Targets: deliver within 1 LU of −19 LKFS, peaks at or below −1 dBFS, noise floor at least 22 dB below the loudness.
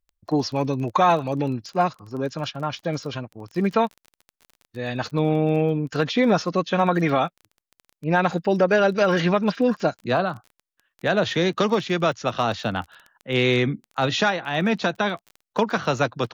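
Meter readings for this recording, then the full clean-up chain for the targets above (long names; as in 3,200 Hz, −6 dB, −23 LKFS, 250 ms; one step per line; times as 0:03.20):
crackle rate 20 per second; integrated loudness −23.0 LKFS; sample peak −7.5 dBFS; target loudness −19.0 LKFS
→ click removal
level +4 dB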